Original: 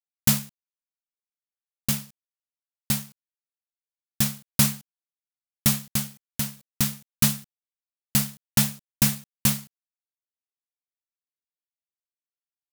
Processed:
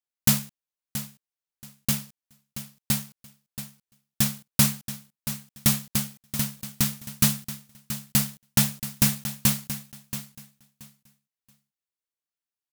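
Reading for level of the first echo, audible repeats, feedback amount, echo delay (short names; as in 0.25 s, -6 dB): -12.0 dB, 2, 20%, 0.678 s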